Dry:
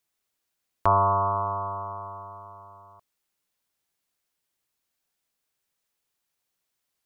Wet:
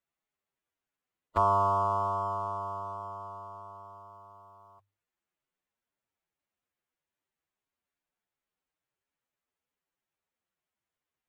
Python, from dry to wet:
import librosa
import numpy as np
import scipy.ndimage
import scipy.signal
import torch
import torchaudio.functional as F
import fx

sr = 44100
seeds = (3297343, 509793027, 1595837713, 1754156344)

y = scipy.ndimage.median_filter(x, 9, mode='constant')
y = fx.stretch_vocoder(y, sr, factor=1.6)
y = fx.hum_notches(y, sr, base_hz=50, count=2)
y = F.gain(torch.from_numpy(y), -4.5).numpy()